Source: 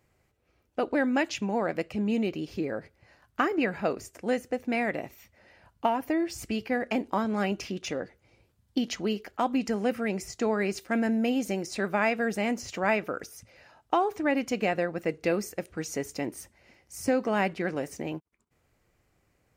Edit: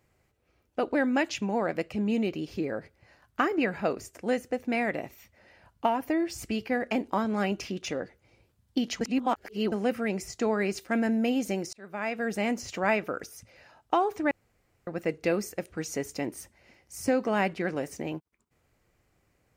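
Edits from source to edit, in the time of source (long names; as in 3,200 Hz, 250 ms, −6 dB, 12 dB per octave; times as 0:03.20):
0:09.01–0:09.72: reverse
0:11.73–0:12.41: fade in
0:14.31–0:14.87: fill with room tone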